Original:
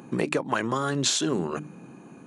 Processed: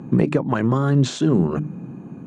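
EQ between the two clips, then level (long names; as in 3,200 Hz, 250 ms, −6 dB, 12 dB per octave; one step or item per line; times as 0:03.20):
low-pass filter 9,000 Hz 24 dB per octave
bass and treble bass +11 dB, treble −4 dB
tilt shelving filter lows +5 dB, about 1,400 Hz
0.0 dB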